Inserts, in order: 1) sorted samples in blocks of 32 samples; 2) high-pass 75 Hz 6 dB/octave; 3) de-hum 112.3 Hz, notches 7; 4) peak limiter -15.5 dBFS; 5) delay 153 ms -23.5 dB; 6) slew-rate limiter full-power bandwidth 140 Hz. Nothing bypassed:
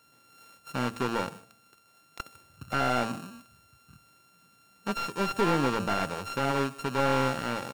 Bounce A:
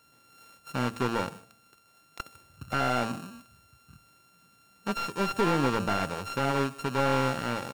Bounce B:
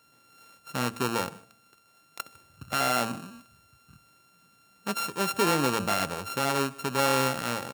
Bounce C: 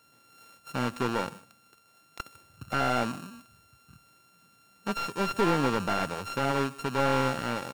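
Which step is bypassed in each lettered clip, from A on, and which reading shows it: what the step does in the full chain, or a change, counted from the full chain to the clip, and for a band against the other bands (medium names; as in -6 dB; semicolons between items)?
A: 2, 125 Hz band +1.5 dB; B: 6, distortion -3 dB; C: 3, momentary loudness spread change +1 LU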